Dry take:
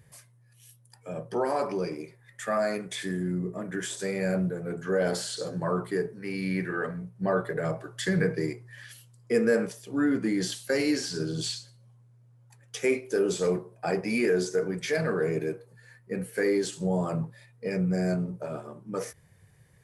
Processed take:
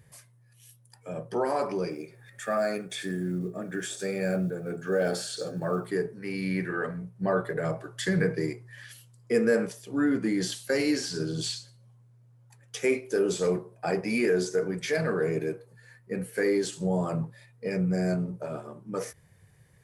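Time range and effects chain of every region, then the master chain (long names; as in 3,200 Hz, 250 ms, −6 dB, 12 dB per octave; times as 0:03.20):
0:01.90–0:05.88: one scale factor per block 7 bits + notch comb filter 1,000 Hz + upward compression, threshold −43 dBFS
whole clip: no processing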